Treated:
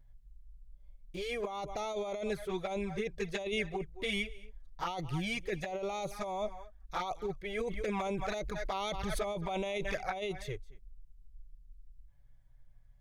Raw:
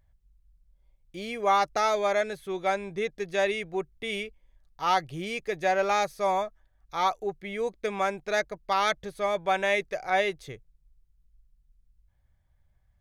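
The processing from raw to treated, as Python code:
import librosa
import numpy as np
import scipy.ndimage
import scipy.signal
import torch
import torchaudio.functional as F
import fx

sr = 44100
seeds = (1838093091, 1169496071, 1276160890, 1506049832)

y = x + 10.0 ** (-21.5 / 20.0) * np.pad(x, (int(220 * sr / 1000.0), 0))[:len(x)]
y = fx.env_flanger(y, sr, rest_ms=7.4, full_db=-24.0)
y = fx.over_compress(y, sr, threshold_db=-33.0, ratio=-1.0)
y = fx.low_shelf(y, sr, hz=89.0, db=11.5)
y = fx.pre_swell(y, sr, db_per_s=22.0, at=(7.57, 9.95))
y = y * 10.0 ** (-2.5 / 20.0)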